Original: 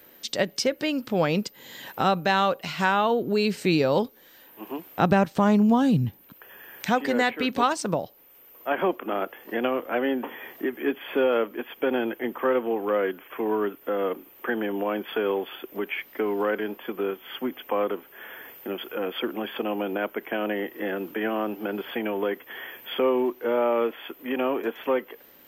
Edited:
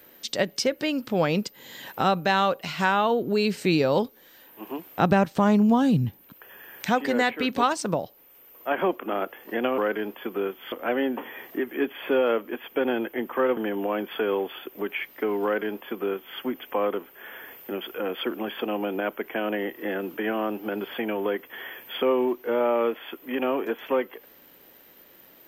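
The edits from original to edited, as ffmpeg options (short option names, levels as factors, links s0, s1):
-filter_complex "[0:a]asplit=4[s0][s1][s2][s3];[s0]atrim=end=9.782[s4];[s1]atrim=start=16.408:end=17.352[s5];[s2]atrim=start=9.778:end=12.632[s6];[s3]atrim=start=14.538[s7];[s4][s5]acrossfade=d=0.004:c1=hsin:c2=hsin[s8];[s8][s6]acrossfade=d=0.004:c1=hsin:c2=hsin[s9];[s9][s7]acrossfade=d=0.004:c1=hsin:c2=hsin"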